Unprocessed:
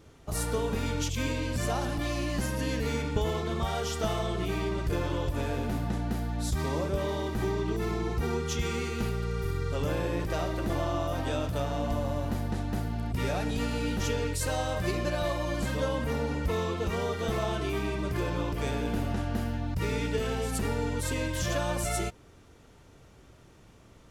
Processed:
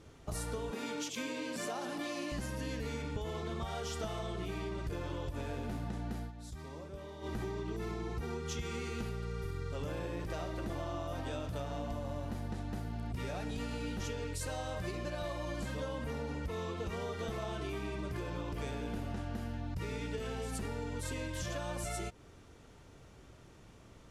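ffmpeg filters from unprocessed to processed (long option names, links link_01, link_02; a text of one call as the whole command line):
ffmpeg -i in.wav -filter_complex "[0:a]asettb=1/sr,asplit=3[link_01][link_02][link_03];[link_01]atrim=end=0.714[link_04];[link_02]atrim=start=0.71:end=2.32,asetpts=PTS-STARTPTS,afade=type=in:duration=0.004:curve=qsin,afade=type=out:start_time=1.606:duration=0.004:curve=qsin,highpass=frequency=210:width=0.5412,highpass=frequency=210:width=1.3066[link_05];[link_03]atrim=start=2.316[link_06];[link_04][link_05]acrossfade=duration=0.004:curve1=hsin:curve2=qsin[link_07];[link_07][link_06]acrossfade=duration=0.004:curve1=qsin:curve2=hsin,asplit=3[link_08][link_09][link_10];[link_08]atrim=end=6.32,asetpts=PTS-STARTPTS,afade=type=out:start_time=6.11:duration=0.21:curve=qsin:silence=0.177828[link_11];[link_09]atrim=start=6.32:end=7.21,asetpts=PTS-STARTPTS,volume=-15dB[link_12];[link_10]atrim=start=7.21,asetpts=PTS-STARTPTS,afade=type=in:duration=0.21:curve=qsin:silence=0.177828[link_13];[link_11][link_12][link_13]concat=n=3:v=0:a=1,lowpass=12000,acompressor=threshold=-34dB:ratio=6,volume=-1.5dB" out.wav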